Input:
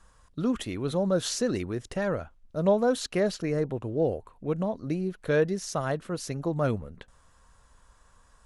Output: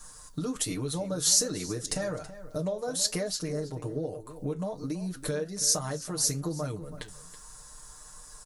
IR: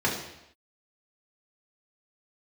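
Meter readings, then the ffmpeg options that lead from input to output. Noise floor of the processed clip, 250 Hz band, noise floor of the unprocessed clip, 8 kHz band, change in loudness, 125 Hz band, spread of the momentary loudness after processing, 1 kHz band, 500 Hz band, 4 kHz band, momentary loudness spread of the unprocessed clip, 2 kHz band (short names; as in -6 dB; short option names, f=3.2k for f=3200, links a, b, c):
-49 dBFS, -5.0 dB, -61 dBFS, +12.0 dB, -1.0 dB, -3.0 dB, 21 LU, -6.5 dB, -7.0 dB, +6.5 dB, 8 LU, -6.0 dB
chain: -filter_complex "[0:a]aecho=1:1:6.6:0.92,acompressor=threshold=-34dB:ratio=6,aexciter=amount=5.2:drive=4.3:freq=4.2k,flanger=delay=8.4:depth=8.4:regen=-64:speed=1.2:shape=triangular,asplit=2[a][b];[b]adelay=326.5,volume=-14dB,highshelf=f=4k:g=-7.35[c];[a][c]amix=inputs=2:normalize=0,volume=7.5dB"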